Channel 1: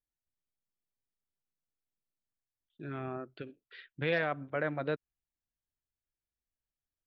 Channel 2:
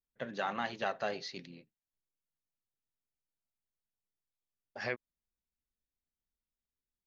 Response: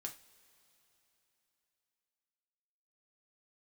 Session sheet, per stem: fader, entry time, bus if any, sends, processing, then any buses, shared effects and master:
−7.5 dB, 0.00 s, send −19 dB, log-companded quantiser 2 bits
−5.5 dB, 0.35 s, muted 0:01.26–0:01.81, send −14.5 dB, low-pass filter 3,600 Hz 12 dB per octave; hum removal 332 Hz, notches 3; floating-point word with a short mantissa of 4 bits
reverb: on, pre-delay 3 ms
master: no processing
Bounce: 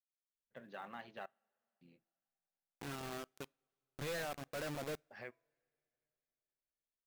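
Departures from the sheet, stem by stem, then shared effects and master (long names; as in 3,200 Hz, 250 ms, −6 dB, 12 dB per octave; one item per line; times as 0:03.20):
stem 1 −7.5 dB → −14.0 dB
stem 2 −5.5 dB → −14.0 dB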